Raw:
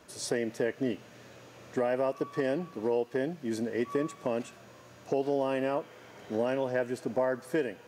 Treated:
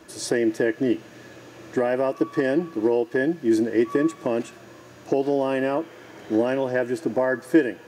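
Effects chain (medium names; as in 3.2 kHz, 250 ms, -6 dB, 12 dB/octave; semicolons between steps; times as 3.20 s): small resonant body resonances 330/1700 Hz, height 12 dB, ringing for 85 ms; trim +5.5 dB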